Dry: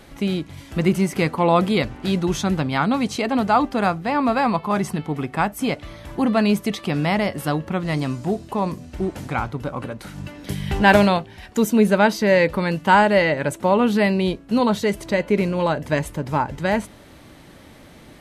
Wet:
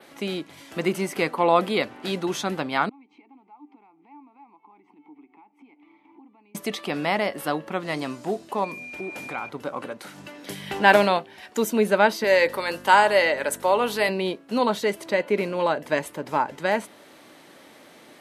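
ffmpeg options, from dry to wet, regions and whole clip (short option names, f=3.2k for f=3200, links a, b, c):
-filter_complex "[0:a]asettb=1/sr,asplit=3[a][b][c];[a]atrim=end=2.894[d];[b]atrim=start=2.89:end=6.55,asetpts=PTS-STARTPTS,afade=t=in:d=0.004:c=qsin,afade=t=out:st=3.656:d=0.004:c=qsin,bass=f=250:g=-4,treble=f=4k:g=-14,acompressor=threshold=-34dB:ratio=12:attack=3.2:release=140:knee=1:detection=peak,asplit=3[e][f][g];[e]bandpass=f=300:t=q:w=8,volume=0dB[h];[f]bandpass=f=870:t=q:w=8,volume=-6dB[i];[g]bandpass=f=2.24k:t=q:w=8,volume=-9dB[j];[h][i][j]amix=inputs=3:normalize=0[k];[c]atrim=start=6.546[l];[d][k]acrossfade=d=0.004:c1=hsin:c2=qsin[m];[m][l]acrossfade=d=0.004:c1=qsin:c2=hsin,asettb=1/sr,asplit=3[n][o][p];[n]atrim=end=8.644[q];[o]atrim=start=8.64:end=9.49,asetpts=PTS-STARTPTS,afade=t=in:d=0.004:c=qsin,afade=t=out:st=0.846:d=0.004:c=qsin,acompressor=threshold=-26dB:ratio=3:attack=3.2:release=140:knee=1:detection=peak,aeval=exprs='val(0)+0.0178*sin(2*PI*2400*n/s)':c=same[r];[p]atrim=start=9.486[s];[q][r]acrossfade=d=0.004:c1=hsin:c2=qsin[t];[t][s]acrossfade=d=0.004:c1=qsin:c2=hsin,asettb=1/sr,asplit=3[u][v][w];[u]atrim=end=12.244[x];[v]atrim=start=12.24:end=14.09,asetpts=PTS-STARTPTS,afade=t=in:d=0.004:c=qsin,afade=t=out:st=1.846:d=0.004:c=qsin,bass=f=250:g=-13,treble=f=4k:g=9,bandreject=f=88.81:t=h:w=4,bandreject=f=177.62:t=h:w=4,bandreject=f=266.43:t=h:w=4,bandreject=f=355.24:t=h:w=4,bandreject=f=444.05:t=h:w=4,bandreject=f=532.86:t=h:w=4,bandreject=f=621.67:t=h:w=4,bandreject=f=710.48:t=h:w=4,bandreject=f=799.29:t=h:w=4,bandreject=f=888.1:t=h:w=4,bandreject=f=976.91:t=h:w=4,bandreject=f=1.06572k:t=h:w=4,bandreject=f=1.15453k:t=h:w=4,bandreject=f=1.24334k:t=h:w=4,bandreject=f=1.33215k:t=h:w=4,bandreject=f=1.42096k:t=h:w=4,bandreject=f=1.50977k:t=h:w=4,bandreject=f=1.59858k:t=h:w=4,bandreject=f=1.68739k:t=h:w=4,bandreject=f=1.7762k:t=h:w=4,bandreject=f=1.86501k:t=h:w=4,bandreject=f=1.95382k:t=h:w=4,aeval=exprs='val(0)+0.0398*(sin(2*PI*50*n/s)+sin(2*PI*2*50*n/s)/2+sin(2*PI*3*50*n/s)/3+sin(2*PI*4*50*n/s)/4+sin(2*PI*5*50*n/s)/5)':c=same[y];[w]atrim=start=14.086[z];[x][y]acrossfade=d=0.004:c1=hsin:c2=qsin[aa];[aa][z]acrossfade=d=0.004:c1=qsin:c2=hsin,highpass=320,adynamicequalizer=threshold=0.00398:dfrequency=6700:dqfactor=1.4:tfrequency=6700:tqfactor=1.4:attack=5:release=100:ratio=0.375:range=2.5:mode=cutabove:tftype=bell,volume=-1dB"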